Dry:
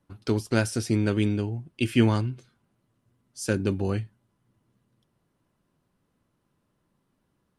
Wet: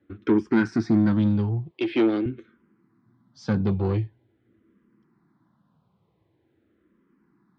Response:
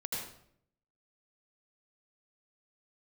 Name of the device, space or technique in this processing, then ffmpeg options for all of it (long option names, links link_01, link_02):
barber-pole phaser into a guitar amplifier: -filter_complex "[0:a]asplit=2[link_01][link_02];[link_02]afreqshift=-0.45[link_03];[link_01][link_03]amix=inputs=2:normalize=1,asoftclip=type=tanh:threshold=-26.5dB,highpass=82,equalizer=frequency=210:width_type=q:width=4:gain=4,equalizer=frequency=330:width_type=q:width=4:gain=7,equalizer=frequency=590:width_type=q:width=4:gain=-6,equalizer=frequency=2800:width_type=q:width=4:gain=-9,lowpass=frequency=3500:width=0.5412,lowpass=frequency=3500:width=1.3066,asettb=1/sr,asplit=3[link_04][link_05][link_06];[link_04]atrim=end=1.714[link_07];[link_05]atrim=start=1.71:end=2.26,asetpts=PTS-STARTPTS,afade=type=in:duration=0.004:curve=qsin,afade=type=out:start_time=0.546:duration=0.004:curve=qsin,highpass=frequency=210:width=0.5412,highpass=frequency=210:width=1.3066[link_08];[link_06]atrim=start=2.256[link_09];[link_07][link_08]acrossfade=duration=0.004:curve1=hsin:curve2=qsin[link_10];[link_10][link_09]acrossfade=duration=0.004:curve1=qsin:curve2=hsin,volume=8.5dB"